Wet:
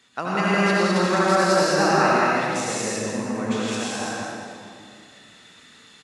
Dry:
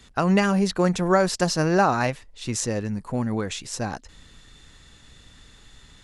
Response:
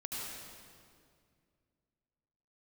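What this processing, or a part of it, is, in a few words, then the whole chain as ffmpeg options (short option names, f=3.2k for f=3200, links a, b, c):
stadium PA: -filter_complex "[0:a]highpass=220,equalizer=f=1.9k:t=o:w=2:g=4.5,aecho=1:1:169.1|207:0.708|0.794[a];[1:a]atrim=start_sample=2205[b];[a][b]afir=irnorm=-1:irlink=0,volume=-2.5dB"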